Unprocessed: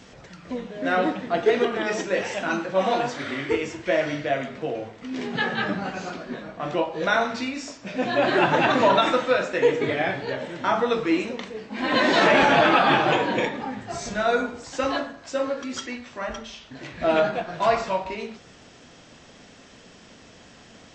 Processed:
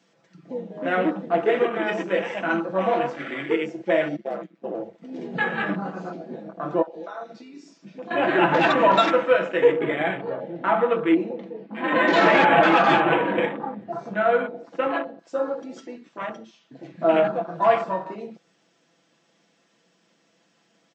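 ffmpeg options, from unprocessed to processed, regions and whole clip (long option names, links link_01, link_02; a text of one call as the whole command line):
ffmpeg -i in.wav -filter_complex "[0:a]asettb=1/sr,asplit=3[link_01][link_02][link_03];[link_01]atrim=end=4.164[link_04];[link_02]atrim=start=4.16:end=4.74,asetpts=PTS-STARTPTS,afade=type=in:duration=0.004:curve=qsin,afade=type=out:start_time=0.576:duration=0.004:curve=qsin,agate=range=-9dB:threshold=-31dB:ratio=16:release=100:detection=peak,volume=20dB,asoftclip=hard,volume=-20dB,aeval=exprs='val(0)*sin(2*PI*64*n/s)':channel_layout=same[link_05];[link_03]atrim=start=4.736[link_06];[link_04][link_05]acrossfade=duration=0.004:curve1=hsin:curve2=qsin[link_07];[link_07][link_06]acrossfade=duration=0.004:curve1=qsin:curve2=hsin,asettb=1/sr,asplit=3[link_08][link_09][link_10];[link_08]atrim=end=6.824[link_11];[link_09]atrim=start=6.82:end=8.11,asetpts=PTS-STARTPTS,afade=type=in:duration=0.004:curve=qsin,afade=type=out:start_time=1.286:duration=0.004:curve=qsin,equalizer=frequency=4700:width_type=o:width=1.4:gain=5.5,bandreject=frequency=60:width_type=h:width=6,bandreject=frequency=120:width_type=h:width=6,bandreject=frequency=180:width_type=h:width=6,bandreject=frequency=240:width_type=h:width=6,bandreject=frequency=300:width_type=h:width=6,bandreject=frequency=360:width_type=h:width=6,bandreject=frequency=420:width_type=h:width=6,bandreject=frequency=480:width_type=h:width=6,bandreject=frequency=540:width_type=h:width=6,acompressor=threshold=-38dB:ratio=2.5:attack=3.2:release=140:knee=1:detection=peak[link_12];[link_10]atrim=start=8.106[link_13];[link_11][link_12]acrossfade=duration=0.004:curve1=hsin:curve2=qsin[link_14];[link_14][link_13]acrossfade=duration=0.004:curve1=qsin:curve2=hsin,asettb=1/sr,asplit=3[link_15][link_16][link_17];[link_15]atrim=end=9.724[link_18];[link_16]atrim=start=9.72:end=15.19,asetpts=PTS-STARTPTS,afade=type=in:duration=0.004:curve=qsin,afade=type=out:start_time=5.466:duration=0.004:curve=qsin,lowpass=3200,aecho=1:1:129|258|387|516|645:0.1|0.059|0.0348|0.0205|0.0121,atrim=end_sample=241227[link_19];[link_17]atrim=start=15.186[link_20];[link_18][link_19]acrossfade=duration=0.004:curve1=hsin:curve2=qsin[link_21];[link_21][link_20]acrossfade=duration=0.004:curve1=qsin:curve2=hsin,afwtdn=0.0282,highpass=frequency=160:width=0.5412,highpass=frequency=160:width=1.3066,aecho=1:1:6:0.52" out.wav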